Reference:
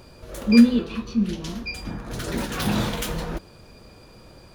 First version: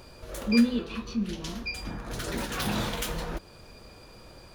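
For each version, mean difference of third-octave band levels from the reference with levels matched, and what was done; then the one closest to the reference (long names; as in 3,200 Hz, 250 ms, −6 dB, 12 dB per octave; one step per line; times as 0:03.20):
4.0 dB: parametric band 170 Hz −4.5 dB 2.6 octaves
in parallel at −2 dB: downward compressor, threshold −34 dBFS, peak gain reduction 20 dB
on the sum: level −5 dB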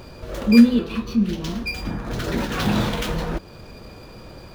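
2.0 dB: running median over 5 samples
in parallel at 0 dB: downward compressor, threshold −34 dBFS, peak gain reduction 23.5 dB
on the sum: level +1 dB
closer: second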